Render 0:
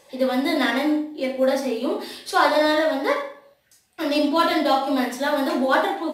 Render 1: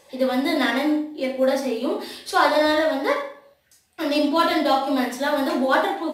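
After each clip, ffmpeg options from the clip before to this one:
ffmpeg -i in.wav -af "equalizer=frequency=76:width=5.9:gain=9" out.wav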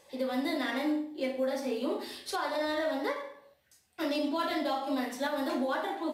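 ffmpeg -i in.wav -af "alimiter=limit=-15.5dB:level=0:latency=1:release=314,volume=-6.5dB" out.wav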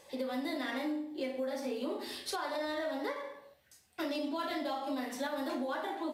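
ffmpeg -i in.wav -af "acompressor=threshold=-38dB:ratio=2.5,volume=2dB" out.wav

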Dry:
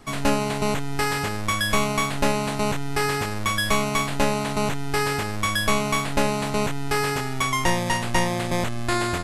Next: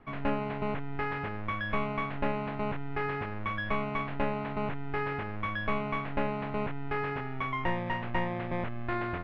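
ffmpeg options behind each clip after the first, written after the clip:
ffmpeg -i in.wav -af "lowpass=frequency=2500:width=0.5412,lowpass=frequency=2500:width=1.3066,volume=-8.5dB" out.wav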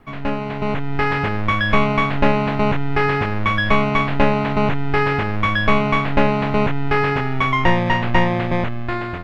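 ffmpeg -i in.wav -af "bass=frequency=250:gain=2,treble=frequency=4000:gain=13,dynaudnorm=framelen=220:gausssize=7:maxgain=8dB,volume=6dB" out.wav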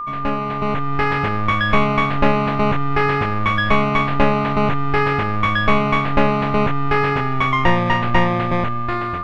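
ffmpeg -i in.wav -af "aeval=exprs='val(0)+0.0631*sin(2*PI*1200*n/s)':channel_layout=same" out.wav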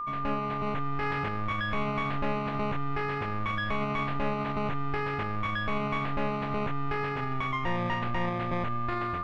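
ffmpeg -i in.wav -af "alimiter=limit=-14.5dB:level=0:latency=1:release=33,volume=-7.5dB" out.wav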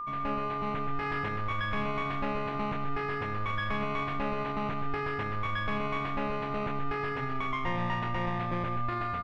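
ffmpeg -i in.wav -af "aecho=1:1:126:0.501,volume=-2.5dB" out.wav

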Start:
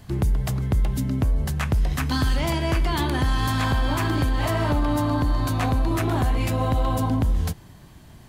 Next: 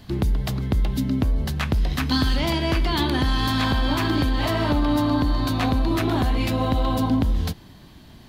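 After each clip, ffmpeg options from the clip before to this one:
ffmpeg -i in.wav -af "equalizer=frequency=125:width_type=o:width=1:gain=-3,equalizer=frequency=250:width_type=o:width=1:gain=5,equalizer=frequency=4000:width_type=o:width=1:gain=8,equalizer=frequency=8000:width_type=o:width=1:gain=-6" out.wav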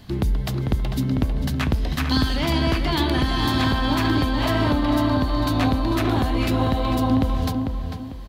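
ffmpeg -i in.wav -filter_complex "[0:a]asplit=2[link_01][link_02];[link_02]adelay=447,lowpass=frequency=2600:poles=1,volume=-5dB,asplit=2[link_03][link_04];[link_04]adelay=447,lowpass=frequency=2600:poles=1,volume=0.34,asplit=2[link_05][link_06];[link_06]adelay=447,lowpass=frequency=2600:poles=1,volume=0.34,asplit=2[link_07][link_08];[link_08]adelay=447,lowpass=frequency=2600:poles=1,volume=0.34[link_09];[link_01][link_03][link_05][link_07][link_09]amix=inputs=5:normalize=0" out.wav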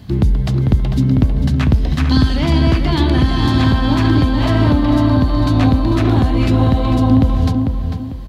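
ffmpeg -i in.wav -filter_complex "[0:a]acrossover=split=9600[link_01][link_02];[link_02]acompressor=threshold=-59dB:ratio=4:attack=1:release=60[link_03];[link_01][link_03]amix=inputs=2:normalize=0,highpass=57,lowshelf=frequency=290:gain=10.5,volume=1.5dB" out.wav

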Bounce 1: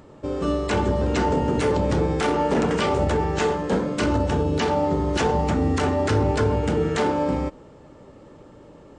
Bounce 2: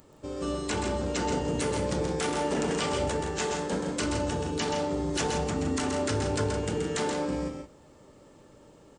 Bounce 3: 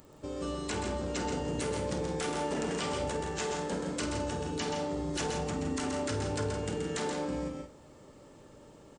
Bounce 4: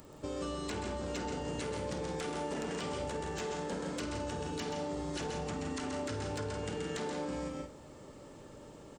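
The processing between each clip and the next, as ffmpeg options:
ffmpeg -i in.wav -filter_complex "[0:a]aemphasis=mode=production:type=75fm,asplit=2[link_01][link_02];[link_02]aecho=0:1:128.3|166.2:0.501|0.316[link_03];[link_01][link_03]amix=inputs=2:normalize=0,volume=-8.5dB" out.wav
ffmpeg -i in.wav -filter_complex "[0:a]acompressor=threshold=-39dB:ratio=1.5,asplit=2[link_01][link_02];[link_02]adelay=50,volume=-11dB[link_03];[link_01][link_03]amix=inputs=2:normalize=0" out.wav
ffmpeg -i in.wav -filter_complex "[0:a]acrossover=split=670|5900[link_01][link_02][link_03];[link_01]acompressor=threshold=-40dB:ratio=4[link_04];[link_02]acompressor=threshold=-45dB:ratio=4[link_05];[link_03]acompressor=threshold=-58dB:ratio=4[link_06];[link_04][link_05][link_06]amix=inputs=3:normalize=0,aeval=exprs='0.0316*(abs(mod(val(0)/0.0316+3,4)-2)-1)':channel_layout=same,volume=2.5dB" out.wav

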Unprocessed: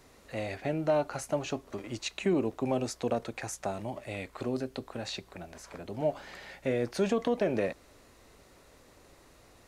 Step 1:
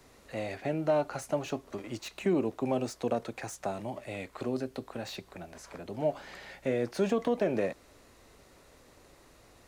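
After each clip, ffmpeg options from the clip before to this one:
ffmpeg -i in.wav -filter_complex "[0:a]acrossover=split=100|1500[link_01][link_02][link_03];[link_01]acompressor=threshold=-59dB:ratio=6[link_04];[link_03]asoftclip=type=tanh:threshold=-38.5dB[link_05];[link_04][link_02][link_05]amix=inputs=3:normalize=0" out.wav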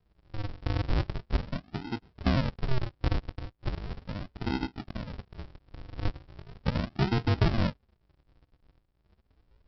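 ffmpeg -i in.wav -af "afftfilt=real='re*pow(10,7/40*sin(2*PI*(0.55*log(max(b,1)*sr/1024/100)/log(2)-(0.94)*(pts-256)/sr)))':imag='im*pow(10,7/40*sin(2*PI*(0.55*log(max(b,1)*sr/1024/100)/log(2)-(0.94)*(pts-256)/sr)))':win_size=1024:overlap=0.75,afwtdn=0.00708,aresample=11025,acrusher=samples=37:mix=1:aa=0.000001:lfo=1:lforange=37:lforate=0.38,aresample=44100,volume=2dB" out.wav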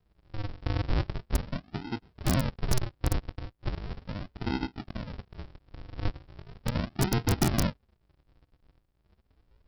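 ffmpeg -i in.wav -af "aeval=exprs='(mod(7.5*val(0)+1,2)-1)/7.5':channel_layout=same" out.wav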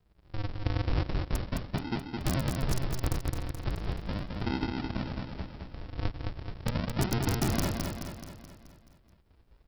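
ffmpeg -i in.wav -filter_complex "[0:a]acompressor=threshold=-27dB:ratio=6,asplit=2[link_01][link_02];[link_02]aecho=0:1:214|428|642|856|1070|1284|1498:0.631|0.334|0.177|0.0939|0.0498|0.0264|0.014[link_03];[link_01][link_03]amix=inputs=2:normalize=0,volume=1.5dB" out.wav

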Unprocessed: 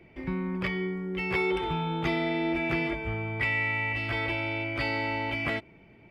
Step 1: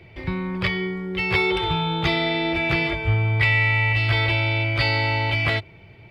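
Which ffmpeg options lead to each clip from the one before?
ffmpeg -i in.wav -af "equalizer=frequency=100:width_type=o:width=0.67:gain=11,equalizer=frequency=250:width_type=o:width=0.67:gain=-10,equalizer=frequency=4000:width_type=o:width=0.67:gain=10,volume=6.5dB" out.wav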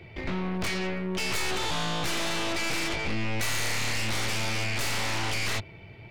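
ffmpeg -i in.wav -af "aeval=exprs='0.531*(cos(1*acos(clip(val(0)/0.531,-1,1)))-cos(1*PI/2))+0.133*(cos(8*acos(clip(val(0)/0.531,-1,1)))-cos(8*PI/2))':channel_layout=same,asoftclip=type=tanh:threshold=-23.5dB" out.wav

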